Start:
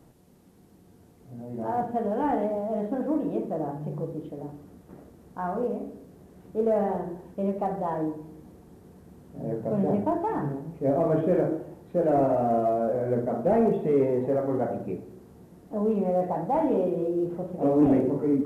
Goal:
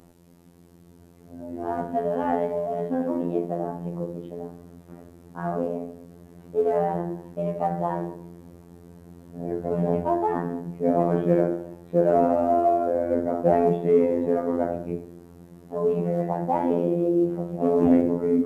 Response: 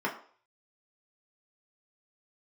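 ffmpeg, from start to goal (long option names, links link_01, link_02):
-af "afftfilt=real='hypot(re,im)*cos(PI*b)':imag='0':win_size=2048:overlap=0.75,volume=6dB"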